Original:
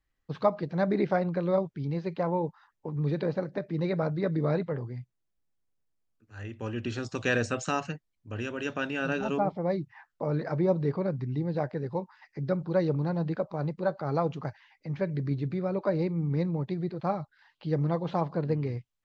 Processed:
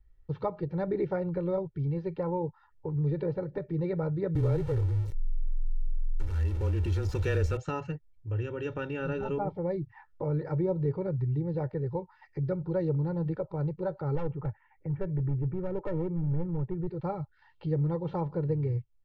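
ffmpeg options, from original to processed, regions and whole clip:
-filter_complex "[0:a]asettb=1/sr,asplit=3[a][b][c];[a]atrim=end=4.354[d];[b]atrim=start=4.35:end=7.57,asetpts=PTS-STARTPTS,afade=t=in:d=0.004:c=qsin,afade=t=out:st=3.216:d=0.004:c=qsin,aeval=exprs='val(0)+0.5*0.0224*sgn(val(0))':c=same,aemphasis=mode=production:type=cd,afreqshift=-21[e];[c]atrim=start=7.566[f];[d][e]acrossfade=d=0.004:c1=hsin:c2=qsin[g];[g][f]acrossfade=d=0.004:c1=qsin:c2=hsin,asettb=1/sr,asplit=3[h][i][j];[h]atrim=end=14.154[k];[i]atrim=start=14.15:end=16.87,asetpts=PTS-STARTPTS,afade=t=in:d=0.004:c=qsin,afade=t=out:st=2.716:d=0.004:c=qsin,lowpass=f=2k:w=0.5412,lowpass=f=2k:w=1.3066,volume=26dB,asoftclip=hard,volume=-26dB[l];[j]atrim=start=16.866[m];[k][l]acrossfade=d=0.004:c1=hsin:c2=qsin[n];[n][m]acrossfade=d=0.004:c1=qsin:c2=hsin,aemphasis=mode=reproduction:type=riaa,aecho=1:1:2.2:0.78,acompressor=threshold=-38dB:ratio=1.5,volume=-1.5dB"

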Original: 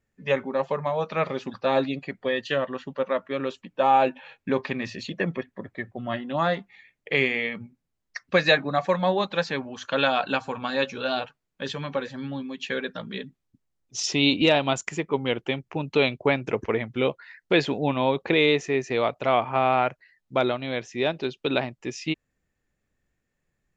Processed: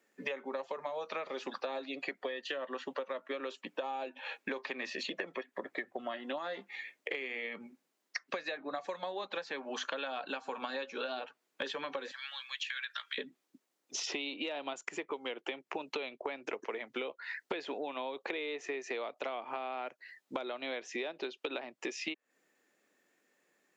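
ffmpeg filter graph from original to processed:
-filter_complex "[0:a]asettb=1/sr,asplit=3[a][b][c];[a]atrim=end=6.384[d];[b]atrim=start=6.38:end=7.15,asetpts=PTS-STARTPTS,afade=t=in:d=0.004:c=qsin,afade=t=out:st=0.766:d=0.004:c=qsin,acompressor=threshold=-30dB:ratio=2:attack=3.2:release=140:knee=1:detection=peak,asplit=2[e][f];[f]adelay=15,volume=-12.5dB[g];[e][g]amix=inputs=2:normalize=0,atrim=end_sample=33957[h];[c]atrim=start=7.146[i];[d][h]acrossfade=d=0.004:c1=hsin:c2=qsin[j];[j][i]acrossfade=d=0.004:c1=qsin:c2=hsin,asettb=1/sr,asplit=3[k][l][m];[k]atrim=end=12.114[n];[l]atrim=start=12.11:end=13.18,asetpts=PTS-STARTPTS,afade=t=in:d=0.004:c=qsin,afade=t=out:st=1.066:d=0.004:c=qsin,highpass=f=1.5k:w=0.5412,highpass=f=1.5k:w=1.3066,acompressor=threshold=-36dB:ratio=6:attack=3.2:release=140:knee=1:detection=peak[o];[m]atrim=start=13.176[p];[n][o]acrossfade=d=0.004:c1=hsin:c2=qsin[q];[q][p]acrossfade=d=0.004:c1=qsin:c2=hsin,acrossover=split=440|3400[r][s][t];[r]acompressor=threshold=-40dB:ratio=4[u];[s]acompressor=threshold=-33dB:ratio=4[v];[t]acompressor=threshold=-48dB:ratio=4[w];[u][v][w]amix=inputs=3:normalize=0,highpass=f=280:w=0.5412,highpass=f=280:w=1.3066,acompressor=threshold=-43dB:ratio=12,volume=8dB"

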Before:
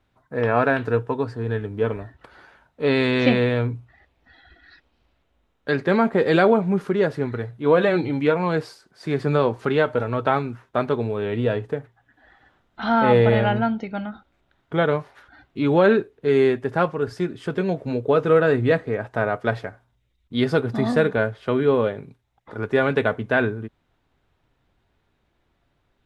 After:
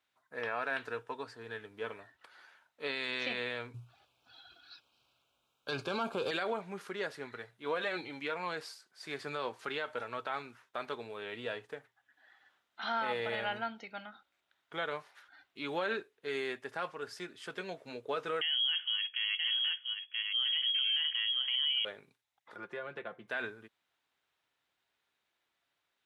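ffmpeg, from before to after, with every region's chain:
-filter_complex "[0:a]asettb=1/sr,asplit=3[a][b][c];[a]atrim=end=3.744[d];[b]atrim=start=3.74:end=6.31,asetpts=PTS-STARTPTS,afade=t=in:d=0.004:c=qsin,afade=t=out:st=2.566:d=0.004:c=qsin,equalizer=f=120:w=2.8:g=14.5,acontrast=88,asuperstop=centerf=1900:order=4:qfactor=2.2[e];[c]atrim=start=6.306[f];[d][e]acrossfade=d=0.004:c1=hsin:c2=qsin[g];[g][f]acrossfade=d=0.004:c1=qsin:c2=hsin,asettb=1/sr,asplit=3[h][i][j];[h]atrim=end=18.414[k];[i]atrim=start=18.41:end=21.85,asetpts=PTS-STARTPTS,afade=t=in:d=0.004:c=qsin,afade=t=out:st=3.436:d=0.004:c=qsin,lowshelf=f=130:g=10.5,aecho=1:1:977:0.299,atrim=end_sample=151704,lowpass=f=2.9k:t=q:w=0.5098,lowpass=f=2.9k:t=q:w=0.6013,lowpass=f=2.9k:t=q:w=0.9,lowpass=f=2.9k:t=q:w=2.563,afreqshift=-3400[l];[j]atrim=start=21.846[m];[k][l]acrossfade=d=0.004:c1=hsin:c2=qsin[n];[n][m]acrossfade=d=0.004:c1=qsin:c2=hsin,asettb=1/sr,asplit=3[o][p][q];[o]atrim=end=22.564[r];[p]atrim=start=22.56:end=23.28,asetpts=PTS-STARTPTS,afade=t=in:d=0.004:c=qsin,afade=t=out:st=0.716:d=0.004:c=qsin,highshelf=f=3.6k:g=-12,aecho=1:1:5.7:0.7,atrim=end_sample=31752,acrossover=split=590|2600[s][t][u];[s]acompressor=threshold=-24dB:ratio=4[v];[t]acompressor=threshold=-35dB:ratio=4[w];[u]acompressor=threshold=-55dB:ratio=4[x];[v][w][x]amix=inputs=3:normalize=0[y];[q]atrim=start=23.276[z];[r][y]acrossfade=d=0.004:c1=hsin:c2=qsin[aa];[aa][z]acrossfade=d=0.004:c1=qsin:c2=hsin,lowpass=f=2.6k:p=1,aderivative,alimiter=level_in=6.5dB:limit=-24dB:level=0:latency=1:release=49,volume=-6.5dB,volume=6dB"

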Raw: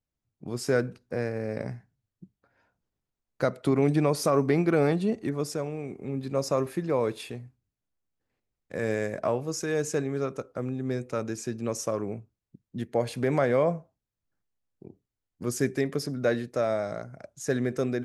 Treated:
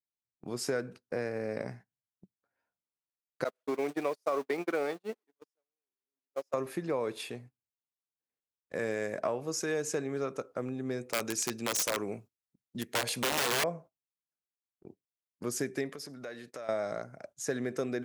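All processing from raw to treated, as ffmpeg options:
-filter_complex "[0:a]asettb=1/sr,asplit=3[a][b][c];[a]atrim=end=3.444[d];[b]atrim=start=3.44:end=6.54,asetpts=PTS-STARTPTS,afade=t=in:d=0.004:c=qsin,afade=t=out:st=3.096:d=0.004:c=qsin,aeval=exprs='val(0)+0.5*0.02*sgn(val(0))':c=same,agate=range=-48dB:threshold=-23dB:ratio=16:release=100:detection=peak,highpass=360[e];[c]atrim=start=6.536[f];[d][e]acrossfade=d=0.004:c1=hsin:c2=qsin[g];[g][f]acrossfade=d=0.004:c1=qsin:c2=hsin,asettb=1/sr,asplit=3[h][i][j];[h]atrim=end=11.134[k];[i]atrim=start=11.13:end=13.64,asetpts=PTS-STARTPTS,afade=t=in:d=0.004:c=qsin,afade=t=out:st=2.506:d=0.004:c=qsin,highshelf=f=2.5k:g=9.5,aeval=exprs='(mod(10.6*val(0)+1,2)-1)/10.6':c=same[l];[j]atrim=start=13.636[m];[k][l]acrossfade=d=0.004:c1=hsin:c2=qsin[n];[n][m]acrossfade=d=0.004:c1=qsin:c2=hsin,asettb=1/sr,asplit=3[o][p][q];[o]atrim=end=15.894[r];[p]atrim=start=15.89:end=16.69,asetpts=PTS-STARTPTS,afade=t=in:d=0.004:c=qsin,afade=t=out:st=0.796:d=0.004:c=qsin,tiltshelf=f=670:g=-3.5,acompressor=threshold=-40dB:ratio=4:attack=3.2:release=140:knee=1:detection=peak[s];[q]atrim=start=16.686[t];[r][s]acrossfade=d=0.004:c1=hsin:c2=qsin[u];[u][t]acrossfade=d=0.004:c1=qsin:c2=hsin,acompressor=threshold=-26dB:ratio=6,highpass=f=290:p=1,agate=range=-16dB:threshold=-50dB:ratio=16:detection=peak"

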